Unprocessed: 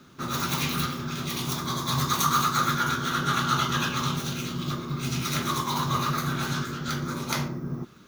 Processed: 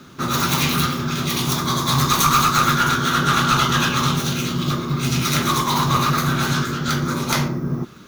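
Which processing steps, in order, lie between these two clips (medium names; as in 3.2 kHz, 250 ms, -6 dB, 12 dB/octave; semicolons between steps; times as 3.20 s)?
one-sided clip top -24.5 dBFS; trim +9 dB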